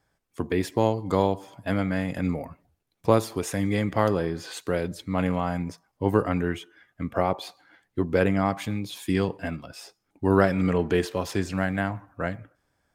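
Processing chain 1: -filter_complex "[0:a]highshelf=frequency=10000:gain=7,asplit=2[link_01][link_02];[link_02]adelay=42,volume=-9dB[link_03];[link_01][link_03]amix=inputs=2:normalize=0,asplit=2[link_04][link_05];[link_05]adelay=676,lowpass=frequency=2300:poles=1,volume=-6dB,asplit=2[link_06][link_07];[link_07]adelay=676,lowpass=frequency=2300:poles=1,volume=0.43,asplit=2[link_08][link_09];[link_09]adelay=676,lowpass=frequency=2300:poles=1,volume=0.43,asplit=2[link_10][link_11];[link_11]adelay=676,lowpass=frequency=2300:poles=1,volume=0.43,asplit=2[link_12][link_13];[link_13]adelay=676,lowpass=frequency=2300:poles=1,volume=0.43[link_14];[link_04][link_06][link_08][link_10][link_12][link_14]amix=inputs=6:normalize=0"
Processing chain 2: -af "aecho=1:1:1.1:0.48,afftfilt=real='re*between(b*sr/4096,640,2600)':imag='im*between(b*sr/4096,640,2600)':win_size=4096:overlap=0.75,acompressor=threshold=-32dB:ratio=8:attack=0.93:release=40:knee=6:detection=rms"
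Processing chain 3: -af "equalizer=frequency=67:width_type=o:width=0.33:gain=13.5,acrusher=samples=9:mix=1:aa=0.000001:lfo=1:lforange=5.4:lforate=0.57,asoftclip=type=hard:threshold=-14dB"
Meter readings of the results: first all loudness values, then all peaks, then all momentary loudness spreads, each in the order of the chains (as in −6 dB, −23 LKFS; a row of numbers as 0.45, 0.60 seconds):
−25.5, −41.0, −27.0 LKFS; −4.0, −26.0, −14.0 dBFS; 8, 11, 12 LU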